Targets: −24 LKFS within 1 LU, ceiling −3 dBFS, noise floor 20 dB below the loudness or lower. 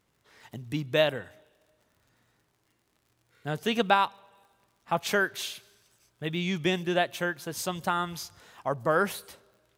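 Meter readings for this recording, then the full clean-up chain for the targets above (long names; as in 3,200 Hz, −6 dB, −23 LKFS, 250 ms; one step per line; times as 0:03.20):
crackle rate 50 per second; integrated loudness −29.0 LKFS; sample peak −7.0 dBFS; target loudness −24.0 LKFS
→ click removal
level +5 dB
brickwall limiter −3 dBFS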